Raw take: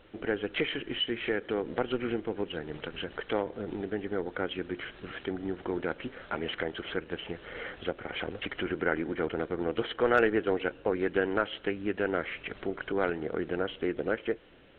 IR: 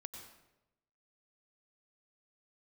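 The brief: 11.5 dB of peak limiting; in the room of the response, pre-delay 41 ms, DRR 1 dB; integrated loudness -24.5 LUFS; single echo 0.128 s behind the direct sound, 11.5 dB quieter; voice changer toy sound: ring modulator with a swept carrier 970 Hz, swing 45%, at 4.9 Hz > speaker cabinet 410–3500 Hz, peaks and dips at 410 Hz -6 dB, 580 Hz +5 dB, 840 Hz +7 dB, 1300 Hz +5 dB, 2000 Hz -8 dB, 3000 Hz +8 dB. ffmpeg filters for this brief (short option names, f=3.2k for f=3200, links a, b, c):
-filter_complex "[0:a]alimiter=limit=-23.5dB:level=0:latency=1,aecho=1:1:128:0.266,asplit=2[a][b];[1:a]atrim=start_sample=2205,adelay=41[c];[b][c]afir=irnorm=-1:irlink=0,volume=3dB[d];[a][d]amix=inputs=2:normalize=0,aeval=exprs='val(0)*sin(2*PI*970*n/s+970*0.45/4.9*sin(2*PI*4.9*n/s))':c=same,highpass=410,equalizer=f=410:t=q:w=4:g=-6,equalizer=f=580:t=q:w=4:g=5,equalizer=f=840:t=q:w=4:g=7,equalizer=f=1.3k:t=q:w=4:g=5,equalizer=f=2k:t=q:w=4:g=-8,equalizer=f=3k:t=q:w=4:g=8,lowpass=f=3.5k:w=0.5412,lowpass=f=3.5k:w=1.3066,volume=9dB"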